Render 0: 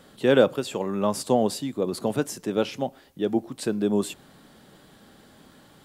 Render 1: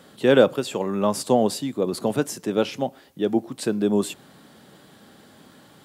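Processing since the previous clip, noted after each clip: HPF 90 Hz; gain +2.5 dB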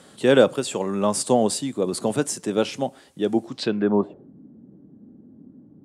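low-pass sweep 8900 Hz -> 270 Hz, 3.44–4.31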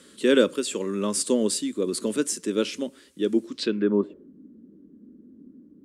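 fixed phaser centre 310 Hz, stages 4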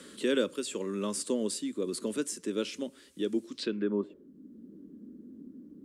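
three-band squash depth 40%; gain -7.5 dB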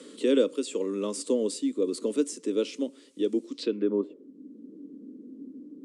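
speaker cabinet 220–9600 Hz, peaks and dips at 280 Hz +9 dB, 470 Hz +9 dB, 1600 Hz -8 dB

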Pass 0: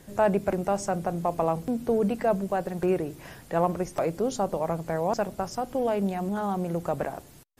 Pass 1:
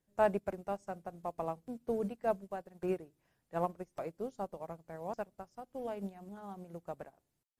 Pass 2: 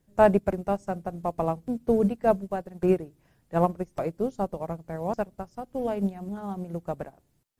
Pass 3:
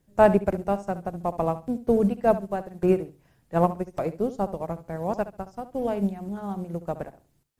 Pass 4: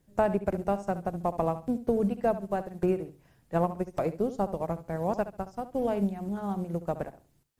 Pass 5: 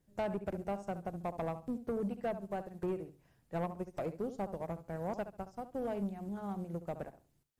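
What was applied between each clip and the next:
upward expander 2.5:1, over -37 dBFS; gain -5 dB
low shelf 310 Hz +8.5 dB; gain +8.5 dB
flutter echo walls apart 11.9 m, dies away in 0.29 s; gain +1.5 dB
compressor 4:1, threshold -23 dBFS, peak gain reduction 10 dB
soft clip -22 dBFS, distortion -15 dB; gain -7 dB

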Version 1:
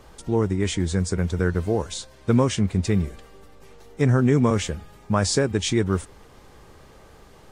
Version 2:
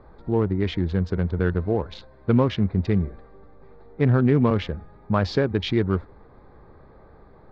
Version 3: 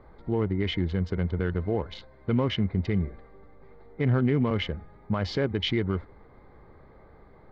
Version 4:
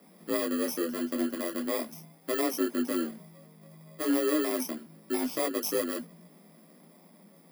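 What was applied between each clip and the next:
Wiener smoothing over 15 samples; steep low-pass 4300 Hz 36 dB/oct
limiter -13 dBFS, peak gain reduction 6.5 dB; small resonant body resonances 2100/3000 Hz, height 12 dB, ringing for 25 ms; gain -3 dB
FFT order left unsorted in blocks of 32 samples; frequency shift +160 Hz; detuned doubles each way 12 cents

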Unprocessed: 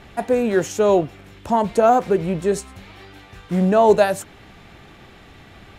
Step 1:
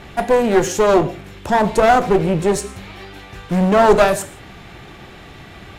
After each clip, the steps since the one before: non-linear reverb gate 0.2 s falling, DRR 10 dB; one-sided clip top -23.5 dBFS; gain +6 dB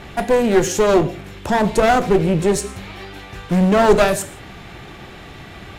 dynamic EQ 900 Hz, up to -5 dB, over -25 dBFS, Q 0.78; gain +1.5 dB

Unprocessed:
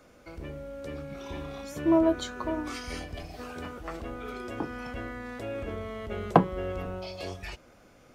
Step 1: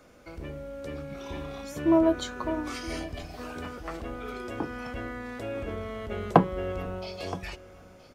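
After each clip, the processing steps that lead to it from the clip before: echo 0.972 s -18.5 dB; gain +1 dB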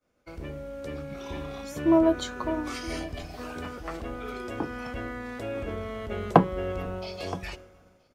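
expander -43 dBFS; gain +1 dB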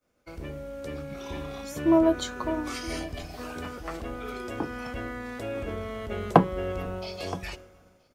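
high shelf 6100 Hz +4.5 dB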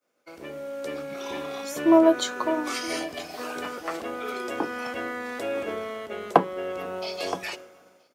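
HPF 320 Hz 12 dB/oct; AGC gain up to 5.5 dB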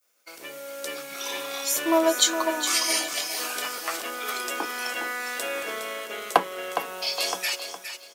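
tilt +4.5 dB/oct; feedback echo 0.412 s, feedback 25%, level -9 dB

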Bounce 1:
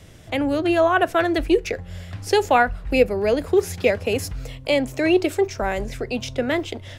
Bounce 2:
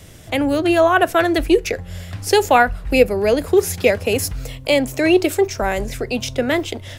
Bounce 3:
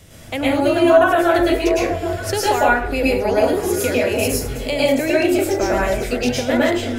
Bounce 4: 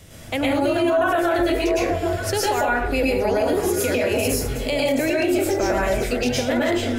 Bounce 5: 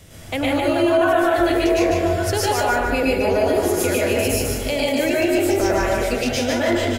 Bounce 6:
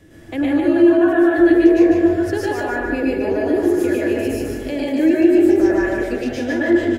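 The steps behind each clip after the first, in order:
high shelf 8100 Hz +10.5 dB; gain +3.5 dB
compressor, threshold -15 dBFS, peak gain reduction 8.5 dB; on a send: delay with a stepping band-pass 0.386 s, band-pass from 280 Hz, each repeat 1.4 oct, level -6 dB; on the sum: plate-style reverb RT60 0.51 s, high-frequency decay 0.65×, pre-delay 95 ms, DRR -6.5 dB; gain -4 dB
limiter -12 dBFS, peak gain reduction 10 dB
feedback echo 0.148 s, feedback 35%, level -3.5 dB
high shelf 3200 Hz -8 dB; small resonant body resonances 320/1700 Hz, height 18 dB, ringing for 55 ms; gain -6 dB

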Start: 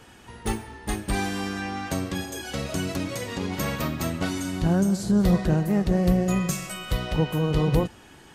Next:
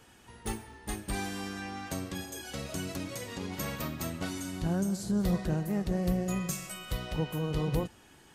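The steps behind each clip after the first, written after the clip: high shelf 6200 Hz +6 dB; gain -8.5 dB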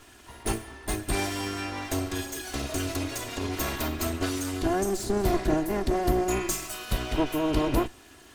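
minimum comb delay 2.9 ms; gain +7.5 dB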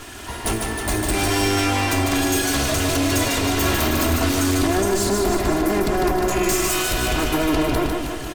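compressor, threshold -29 dBFS, peak gain reduction 10.5 dB; sine folder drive 11 dB, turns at -18 dBFS; on a send: reverse bouncing-ball echo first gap 0.15 s, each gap 1.1×, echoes 5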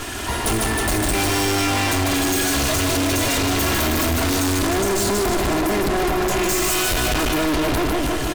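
hard clip -26.5 dBFS, distortion -6 dB; gain +8 dB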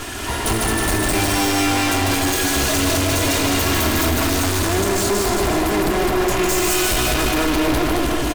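echo 0.217 s -4 dB

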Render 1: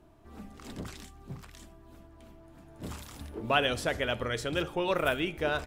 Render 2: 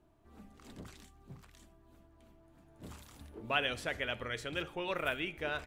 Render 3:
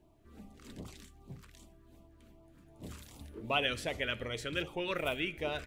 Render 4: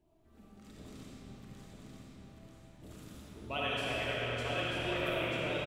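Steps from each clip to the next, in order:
notch 5200 Hz, Q 25; dynamic EQ 2200 Hz, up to +7 dB, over -47 dBFS, Q 1.1; gain -9 dB
LFO notch sine 2.6 Hz 740–1700 Hz; gain +3 dB
on a send: echo 0.938 s -4.5 dB; on the sum: digital reverb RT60 4.9 s, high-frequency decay 0.7×, pre-delay 15 ms, DRR -7 dB; gain -8 dB

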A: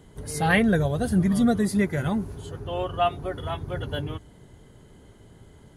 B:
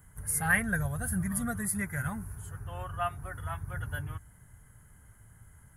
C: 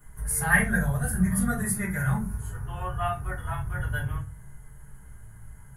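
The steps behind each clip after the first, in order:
EQ curve 110 Hz 0 dB, 380 Hz -19 dB, 1600 Hz +4 dB, 3800 Hz -18 dB, 11000 Hz +12 dB; gain -3 dB
shoebox room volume 120 m³, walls furnished, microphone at 3.3 m; gain -3 dB

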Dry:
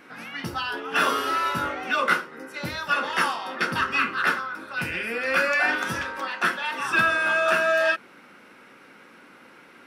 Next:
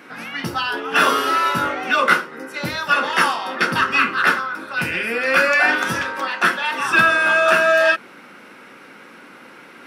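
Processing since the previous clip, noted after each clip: HPF 99 Hz; reverse; upward compressor, threshold -45 dBFS; reverse; gain +6.5 dB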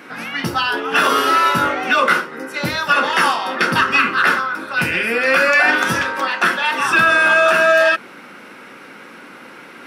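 limiter -8.5 dBFS, peak gain reduction 6 dB; gain +4 dB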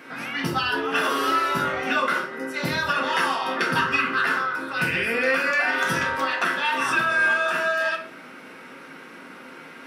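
compressor, threshold -15 dBFS, peak gain reduction 6 dB; on a send at -2 dB: reverb RT60 0.55 s, pre-delay 4 ms; on the sum: gain -6 dB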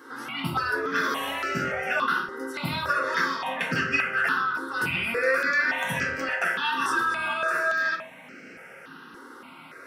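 step phaser 3.5 Hz 650–3600 Hz

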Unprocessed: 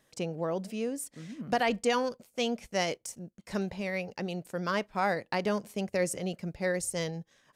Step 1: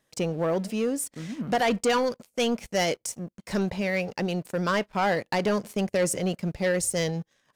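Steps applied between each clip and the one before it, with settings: sample leveller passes 2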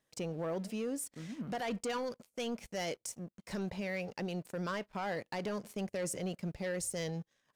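limiter -22 dBFS, peak gain reduction 5.5 dB; gain -8.5 dB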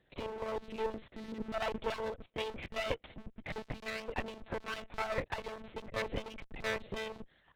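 bin magnitudes rounded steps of 15 dB; monotone LPC vocoder at 8 kHz 220 Hz; one-sided clip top -47.5 dBFS; gain +10.5 dB

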